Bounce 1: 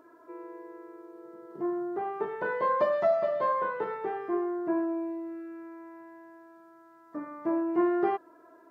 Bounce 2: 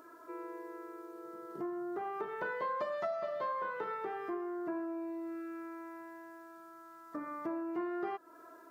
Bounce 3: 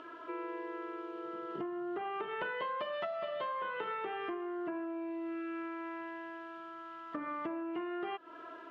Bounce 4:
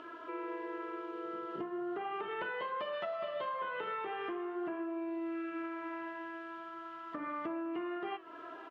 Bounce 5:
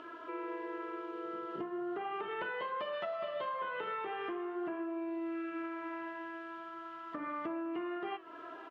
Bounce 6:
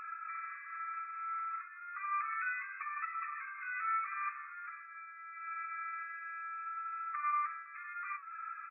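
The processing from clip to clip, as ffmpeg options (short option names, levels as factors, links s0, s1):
-af "equalizer=f=1300:t=o:w=0.21:g=6.5,acompressor=threshold=0.0141:ratio=3,highshelf=f=2500:g=11.5,volume=0.841"
-af "acompressor=threshold=0.00794:ratio=4,lowpass=f=3000:t=q:w=5.9,volume=1.78"
-filter_complex "[0:a]asplit=2[s0][s1];[s1]alimiter=level_in=2.99:limit=0.0631:level=0:latency=1,volume=0.335,volume=1[s2];[s0][s2]amix=inputs=2:normalize=0,flanger=delay=8.8:depth=8.8:regen=-72:speed=0.39:shape=sinusoidal,aecho=1:1:511:0.106,volume=0.891"
-af anull
-af "equalizer=f=1700:w=1.8:g=-10,asoftclip=type=tanh:threshold=0.0168,afftfilt=real='re*between(b*sr/4096,1100,2600)':imag='im*between(b*sr/4096,1100,2600)':win_size=4096:overlap=0.75,volume=4.73"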